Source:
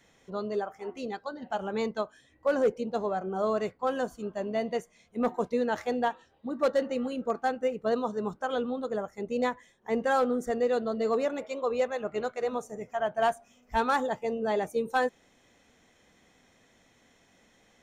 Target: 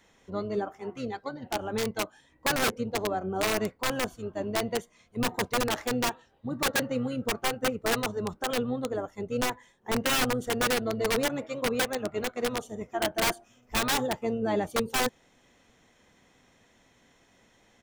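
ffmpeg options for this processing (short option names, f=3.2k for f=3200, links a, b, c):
-filter_complex "[0:a]aeval=exprs='(mod(11.2*val(0)+1,2)-1)/11.2':c=same,asplit=2[a][b];[b]asetrate=22050,aresample=44100,atempo=2,volume=-7dB[c];[a][c]amix=inputs=2:normalize=0"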